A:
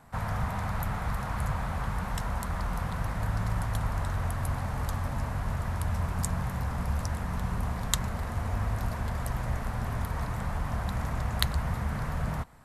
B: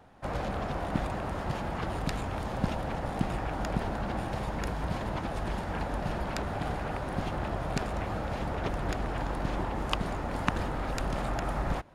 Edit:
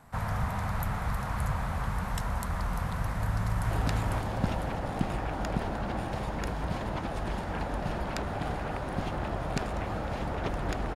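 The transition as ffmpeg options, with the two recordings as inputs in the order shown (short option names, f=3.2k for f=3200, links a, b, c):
-filter_complex "[0:a]apad=whole_dur=10.95,atrim=end=10.95,atrim=end=3.712[a];[1:a]atrim=start=1.908:end=9.15[b];[a][b]acrossfade=d=0.004:c1=hsin:c2=hsin,asplit=2[c][d];[d]afade=t=in:st=3.14:d=0.01,afade=t=out:st=3.71:d=0.01,aecho=0:1:500|1000|1500|2000|2500|3000:0.891251|0.401063|0.180478|0.0812152|0.0365469|0.0164461[e];[c][e]amix=inputs=2:normalize=0"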